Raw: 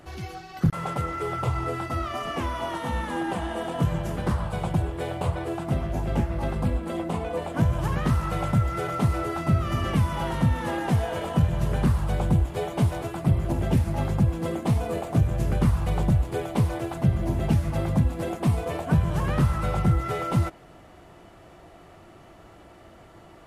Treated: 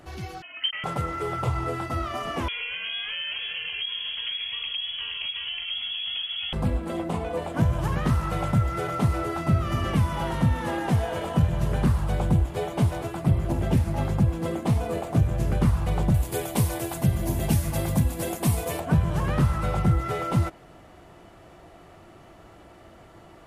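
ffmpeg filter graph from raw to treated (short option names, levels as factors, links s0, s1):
-filter_complex "[0:a]asettb=1/sr,asplit=3[s0][s1][s2];[s0]atrim=end=0.424[s3];[s1]atrim=start=0.42:end=0.84,asetpts=PTS-STARTPTS,afade=t=in:d=0.004:c=qsin,afade=t=out:st=0.416:d=0.004:c=qsin,highpass=f=190:w=0.5412,highpass=f=190:w=1.3066,lowpass=f=2800:t=q:w=0.5098,lowpass=f=2800:t=q:w=0.6013,lowpass=f=2800:t=q:w=0.9,lowpass=f=2800:t=q:w=2.563,afreqshift=-3300[s4];[s2]atrim=start=0.836[s5];[s3][s4]acrossfade=d=0.004:c1=hsin:c2=qsin[s6];[s6][s5]acrossfade=d=0.004:c1=qsin:c2=hsin,asettb=1/sr,asplit=3[s7][s8][s9];[s7]atrim=end=2.484[s10];[s8]atrim=start=2.48:end=6.53,asetpts=PTS-STARTPTS,afade=t=in:d=0.004:c=qsin,afade=t=out:st=4.046:d=0.004:c=qsin,acompressor=threshold=0.0398:ratio=4:attack=3.2:release=140:knee=1:detection=peak,lowpass=f=2900:t=q:w=0.5098,lowpass=f=2900:t=q:w=0.6013,lowpass=f=2900:t=q:w=0.9,lowpass=f=2900:t=q:w=2.563,afreqshift=-3400,asubboost=boost=8:cutoff=150[s11];[s9]atrim=start=6.526[s12];[s10][s11]acrossfade=d=0.004:c1=hsin:c2=qsin[s13];[s13][s12]acrossfade=d=0.004:c1=qsin:c2=hsin,asettb=1/sr,asplit=3[s14][s15][s16];[s14]atrim=end=16.144[s17];[s15]atrim=start=16.14:end=18.8,asetpts=PTS-STARTPTS,afade=t=in:d=0.004:c=qsin,afade=t=out:st=2.656:d=0.004:c=qsin,aemphasis=mode=production:type=75fm,bandreject=f=1300:w=16[s18];[s16]atrim=start=18.796[s19];[s17][s18]acrossfade=d=0.004:c1=hsin:c2=qsin[s20];[s20][s19]acrossfade=d=0.004:c1=qsin:c2=hsin"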